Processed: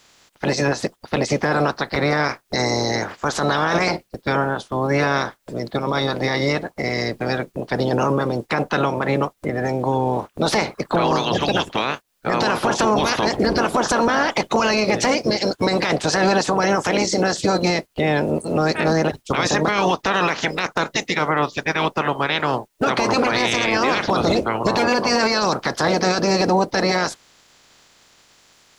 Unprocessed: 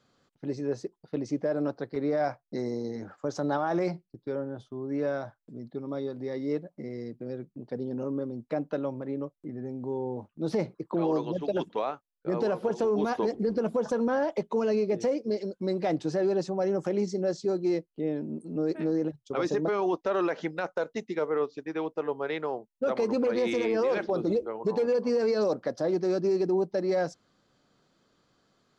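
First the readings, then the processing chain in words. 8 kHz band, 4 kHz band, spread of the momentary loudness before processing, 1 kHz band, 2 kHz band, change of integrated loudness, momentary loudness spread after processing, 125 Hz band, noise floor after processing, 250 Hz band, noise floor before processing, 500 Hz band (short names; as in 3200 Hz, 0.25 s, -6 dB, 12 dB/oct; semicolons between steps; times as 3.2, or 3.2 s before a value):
n/a, +23.0 dB, 10 LU, +16.0 dB, +19.5 dB, +10.0 dB, 6 LU, +13.5 dB, -58 dBFS, +8.0 dB, -78 dBFS, +6.5 dB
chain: spectral limiter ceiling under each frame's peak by 25 dB; maximiser +23.5 dB; gain -8.5 dB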